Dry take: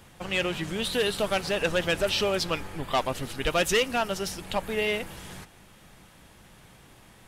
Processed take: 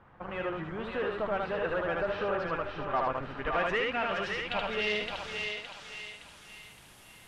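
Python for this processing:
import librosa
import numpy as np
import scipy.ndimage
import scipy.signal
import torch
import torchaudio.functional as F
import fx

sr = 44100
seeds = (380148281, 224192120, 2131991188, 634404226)

p1 = fx.low_shelf(x, sr, hz=400.0, db=-3.5)
p2 = p1 + fx.echo_single(p1, sr, ms=76, db=-3.5, dry=0)
p3 = 10.0 ** (-20.5 / 20.0) * np.tanh(p2 / 10.0 ** (-20.5 / 20.0))
p4 = fx.filter_sweep_lowpass(p3, sr, from_hz=1300.0, to_hz=12000.0, start_s=3.17, end_s=6.66, q=1.7)
p5 = fx.echo_thinned(p4, sr, ms=566, feedback_pct=45, hz=770.0, wet_db=-3)
y = F.gain(torch.from_numpy(p5), -4.5).numpy()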